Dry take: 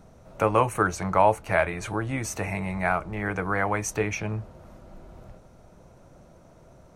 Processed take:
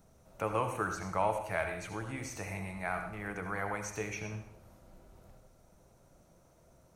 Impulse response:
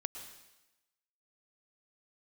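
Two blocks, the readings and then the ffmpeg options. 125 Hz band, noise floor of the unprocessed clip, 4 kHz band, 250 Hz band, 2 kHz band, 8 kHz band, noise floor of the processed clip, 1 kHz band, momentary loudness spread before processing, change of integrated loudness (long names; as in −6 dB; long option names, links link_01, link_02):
−11.0 dB, −53 dBFS, −8.0 dB, −11.0 dB, −9.5 dB, −10.0 dB, −64 dBFS, −10.5 dB, 9 LU, −10.5 dB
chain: -filter_complex "[0:a]aemphasis=mode=production:type=50kf,acrossover=split=5700[link_01][link_02];[link_02]acompressor=threshold=-42dB:ratio=4:attack=1:release=60[link_03];[link_01][link_03]amix=inputs=2:normalize=0[link_04];[1:a]atrim=start_sample=2205,asetrate=70560,aresample=44100[link_05];[link_04][link_05]afir=irnorm=-1:irlink=0,volume=-6dB"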